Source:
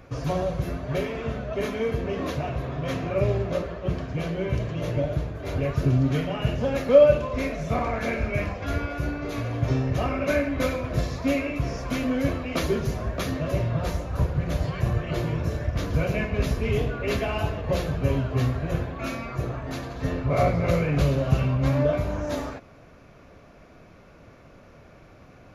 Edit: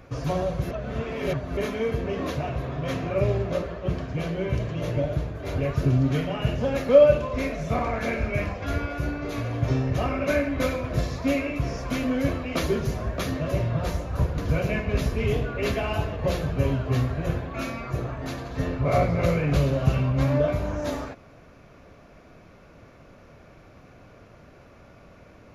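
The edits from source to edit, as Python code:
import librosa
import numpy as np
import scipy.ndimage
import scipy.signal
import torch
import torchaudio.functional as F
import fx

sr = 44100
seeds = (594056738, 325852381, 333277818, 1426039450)

y = fx.edit(x, sr, fx.reverse_span(start_s=0.71, length_s=0.86),
    fx.cut(start_s=14.38, length_s=1.45), tone=tone)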